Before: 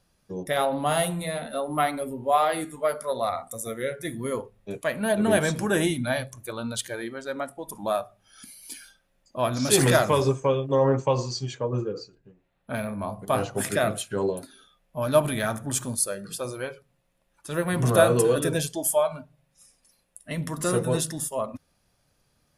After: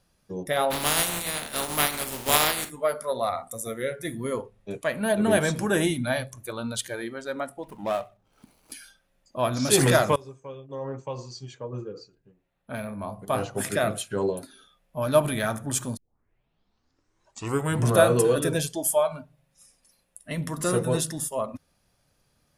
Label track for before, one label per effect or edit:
0.700000	2.690000	spectral contrast reduction exponent 0.31
4.230000	4.940000	low-pass 11 kHz
7.630000	8.720000	median filter over 25 samples
10.160000	14.220000	fade in, from -23.5 dB
15.970000	15.970000	tape start 1.97 s

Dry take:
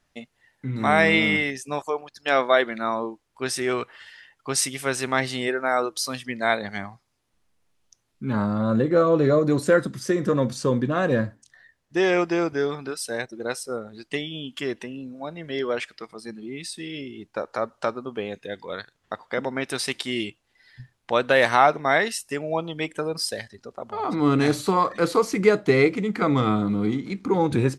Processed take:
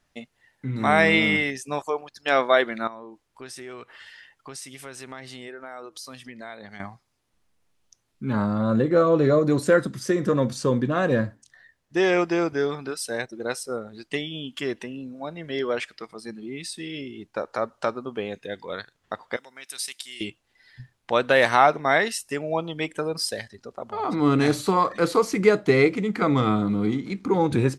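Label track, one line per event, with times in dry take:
2.870000	6.800000	compression 3:1, threshold -40 dBFS
19.360000	20.210000	pre-emphasis filter coefficient 0.97

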